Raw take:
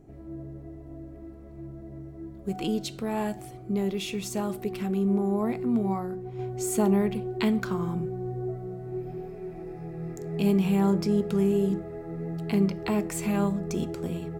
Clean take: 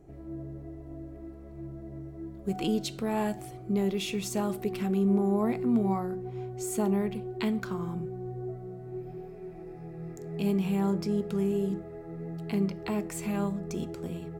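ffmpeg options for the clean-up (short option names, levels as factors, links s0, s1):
-af "bandreject=f=49.9:t=h:w=4,bandreject=f=99.8:t=h:w=4,bandreject=f=149.7:t=h:w=4,bandreject=f=199.6:t=h:w=4,bandreject=f=249.5:t=h:w=4,bandreject=f=299.4:t=h:w=4,asetnsamples=n=441:p=0,asendcmd='6.39 volume volume -4.5dB',volume=1"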